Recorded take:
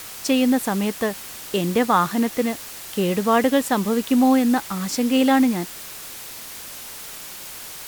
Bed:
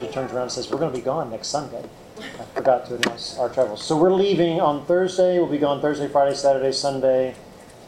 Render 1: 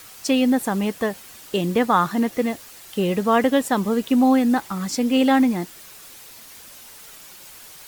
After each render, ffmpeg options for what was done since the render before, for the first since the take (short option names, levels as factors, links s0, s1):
-af "afftdn=nr=8:nf=-37"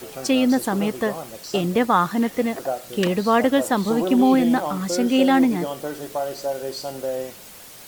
-filter_complex "[1:a]volume=0.376[s0];[0:a][s0]amix=inputs=2:normalize=0"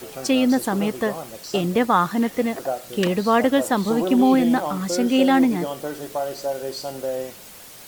-af anull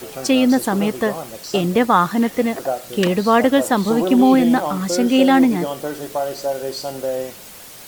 -af "volume=1.5"